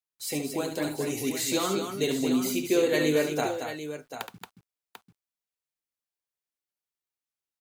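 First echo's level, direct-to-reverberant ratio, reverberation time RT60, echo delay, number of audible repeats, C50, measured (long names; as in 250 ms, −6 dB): −7.5 dB, no reverb audible, no reverb audible, 71 ms, 3, no reverb audible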